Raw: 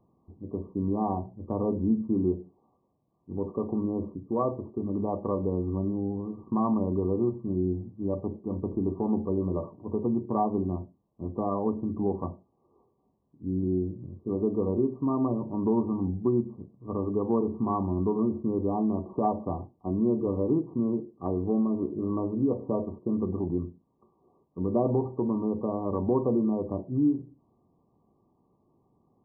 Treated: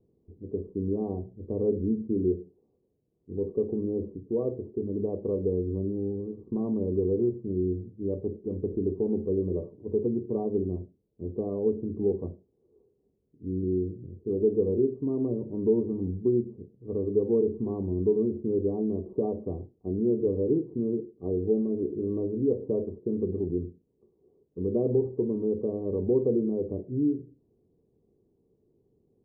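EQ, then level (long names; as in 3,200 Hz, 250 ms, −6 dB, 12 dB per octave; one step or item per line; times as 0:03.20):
low-pass with resonance 440 Hz, resonance Q 5
low-shelf EQ 140 Hz +12 dB
−9.0 dB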